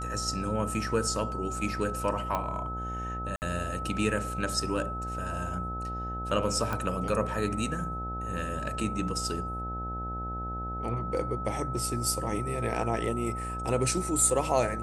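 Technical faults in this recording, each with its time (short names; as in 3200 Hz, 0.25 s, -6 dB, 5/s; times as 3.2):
buzz 60 Hz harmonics 15 -37 dBFS
tone 1300 Hz -35 dBFS
2.35 pop -16 dBFS
3.36–3.42 gap 59 ms
6.73 pop -18 dBFS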